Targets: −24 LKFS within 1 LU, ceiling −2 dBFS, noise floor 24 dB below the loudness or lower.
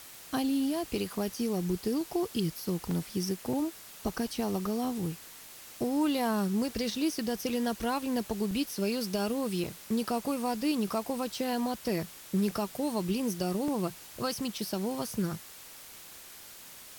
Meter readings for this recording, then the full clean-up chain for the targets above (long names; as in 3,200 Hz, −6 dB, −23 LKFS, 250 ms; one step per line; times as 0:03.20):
number of dropouts 7; longest dropout 2.8 ms; background noise floor −49 dBFS; target noise floor −56 dBFS; integrated loudness −32.0 LKFS; sample peak −18.0 dBFS; target loudness −24.0 LKFS
→ repair the gap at 0:01.34/0:02.91/0:03.53/0:04.09/0:08.51/0:09.64/0:13.68, 2.8 ms
noise reduction from a noise print 7 dB
level +8 dB